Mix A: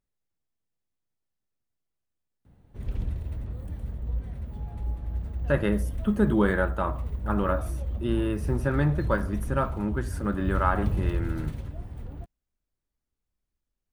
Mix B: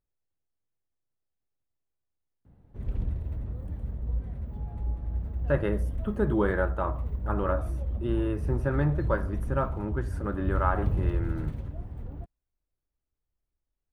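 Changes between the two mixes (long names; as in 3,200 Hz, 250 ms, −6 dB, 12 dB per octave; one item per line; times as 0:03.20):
speech: add parametric band 210 Hz −8 dB 0.54 octaves
master: add high-shelf EQ 2,300 Hz −11.5 dB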